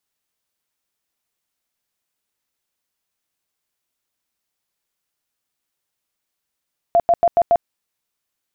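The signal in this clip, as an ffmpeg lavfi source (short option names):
-f lavfi -i "aevalsrc='0.316*sin(2*PI*686*mod(t,0.14))*lt(mod(t,0.14),33/686)':d=0.7:s=44100"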